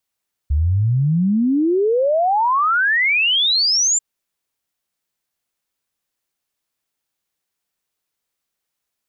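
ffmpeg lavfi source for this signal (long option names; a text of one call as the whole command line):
ffmpeg -f lavfi -i "aevalsrc='0.211*clip(min(t,3.49-t)/0.01,0,1)*sin(2*PI*69*3.49/log(7400/69)*(exp(log(7400/69)*t/3.49)-1))':duration=3.49:sample_rate=44100" out.wav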